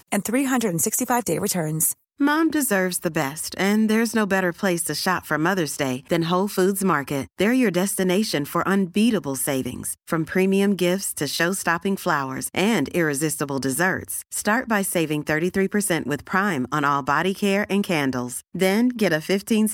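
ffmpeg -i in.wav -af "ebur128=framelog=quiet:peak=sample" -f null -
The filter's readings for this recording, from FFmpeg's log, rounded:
Integrated loudness:
  I:         -22.1 LUFS
  Threshold: -32.0 LUFS
Loudness range:
  LRA:         1.2 LU
  Threshold: -42.1 LUFS
  LRA low:   -22.7 LUFS
  LRA high:  -21.5 LUFS
Sample peak:
  Peak:       -5.4 dBFS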